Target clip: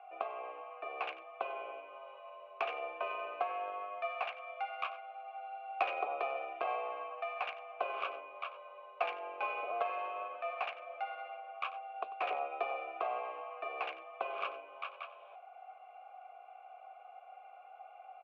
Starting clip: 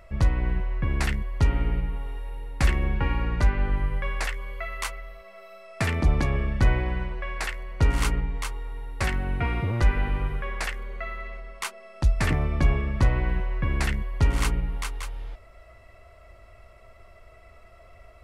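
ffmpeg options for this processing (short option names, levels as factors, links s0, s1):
-filter_complex "[0:a]asplit=2[s0][s1];[s1]acompressor=threshold=0.0282:ratio=6,volume=0.708[s2];[s0][s2]amix=inputs=2:normalize=0,highpass=f=300:t=q:w=0.5412,highpass=f=300:t=q:w=1.307,lowpass=f=3300:t=q:w=0.5176,lowpass=f=3300:t=q:w=0.7071,lowpass=f=3300:t=q:w=1.932,afreqshift=120,aeval=exprs='0.251*(cos(1*acos(clip(val(0)/0.251,-1,1)))-cos(1*PI/2))+0.0447*(cos(2*acos(clip(val(0)/0.251,-1,1)))-cos(2*PI/2))+0.0398*(cos(3*acos(clip(val(0)/0.251,-1,1)))-cos(3*PI/2))':c=same,asplit=3[s3][s4][s5];[s3]bandpass=f=730:t=q:w=8,volume=1[s6];[s4]bandpass=f=1090:t=q:w=8,volume=0.501[s7];[s5]bandpass=f=2440:t=q:w=8,volume=0.355[s8];[s6][s7][s8]amix=inputs=3:normalize=0,aecho=1:1:94:0.158,volume=2.51"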